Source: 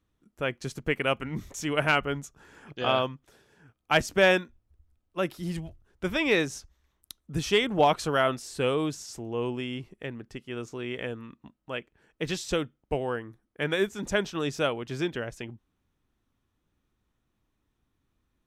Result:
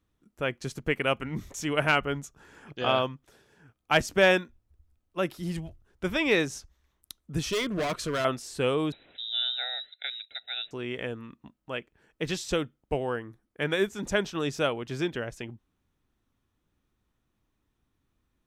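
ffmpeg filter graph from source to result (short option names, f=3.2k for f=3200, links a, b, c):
-filter_complex "[0:a]asettb=1/sr,asplit=3[a][b][c];[a]atrim=end=7.484[d];[b]atrim=start=7.48:end=8.25,asetpts=PTS-STARTPTS,afade=t=in:d=0.004:c=qsin,afade=t=out:st=0.766:d=0.004:c=qsin,volume=25dB,asoftclip=hard,volume=-25dB,asuperstop=centerf=820:order=4:qfactor=3.6[e];[c]atrim=start=8.246[f];[d][e]acrossfade=d=0.004:c1=hsin:c2=qsin[g];[g][f]acrossfade=d=0.004:c1=qsin:c2=hsin,asettb=1/sr,asplit=3[h][i][j];[h]atrim=end=8.924[k];[i]atrim=start=8.92:end=10.71,asetpts=PTS-STARTPTS,afade=t=in:d=0.004:c=qsin,afade=t=out:st=1.786:d=0.004:c=qsin,asuperstop=centerf=2900:order=8:qfactor=4.6,highshelf=f=2.4k:g=8.5,lowpass=f=3.4k:t=q:w=0.5098,lowpass=f=3.4k:t=q:w=0.6013,lowpass=f=3.4k:t=q:w=0.9,lowpass=f=3.4k:t=q:w=2.563,afreqshift=-4000[l];[j]atrim=start=10.706[m];[k][l]acrossfade=d=0.004:c1=hsin:c2=qsin[n];[n][m]acrossfade=d=0.004:c1=qsin:c2=hsin"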